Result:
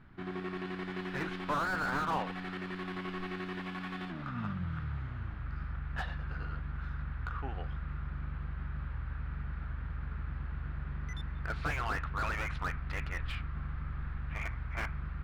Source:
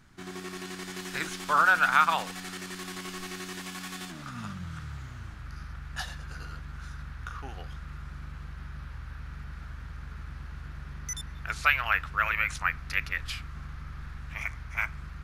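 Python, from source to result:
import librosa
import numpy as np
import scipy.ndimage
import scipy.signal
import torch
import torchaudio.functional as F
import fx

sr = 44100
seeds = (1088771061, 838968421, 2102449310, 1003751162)

y = fx.air_absorb(x, sr, metres=440.0)
y = fx.slew_limit(y, sr, full_power_hz=25.0)
y = y * 10.0 ** (2.5 / 20.0)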